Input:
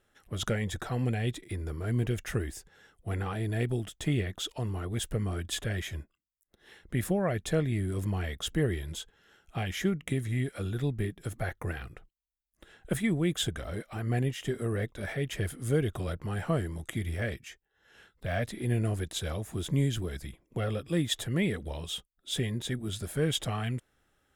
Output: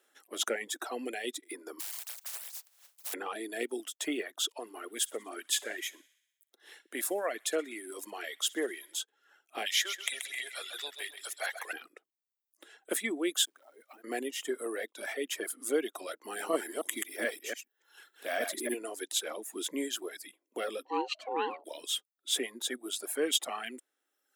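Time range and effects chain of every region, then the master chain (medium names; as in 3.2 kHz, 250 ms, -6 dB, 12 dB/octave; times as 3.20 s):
1.79–3.12 s: spectral contrast reduction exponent 0.11 + high-pass 540 Hz 24 dB/octave + compression 16:1, threshold -41 dBFS
4.55–8.99 s: bass shelf 270 Hz -7.5 dB + feedback echo behind a high-pass 62 ms, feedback 62%, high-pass 1.6 kHz, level -11.5 dB
9.66–11.73 s: high-pass 630 Hz 24 dB/octave + peaking EQ 3.9 kHz +10 dB 1.4 oct + feedback delay 132 ms, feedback 52%, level -6 dB
13.45–14.04 s: block-companded coder 5-bit + compression 8:1, threshold -46 dBFS + transformer saturation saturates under 330 Hz
16.24–18.74 s: chunks repeated in reverse 144 ms, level -1.5 dB + treble shelf 12 kHz +9.5 dB
20.85–21.64 s: ring modulator 640 Hz + distance through air 220 m
whole clip: steep high-pass 270 Hz 48 dB/octave; reverb removal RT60 1.1 s; treble shelf 4.5 kHz +8.5 dB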